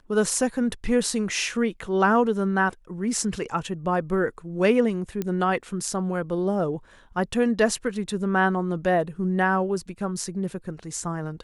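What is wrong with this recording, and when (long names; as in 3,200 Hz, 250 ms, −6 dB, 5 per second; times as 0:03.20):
0:05.22: click −15 dBFS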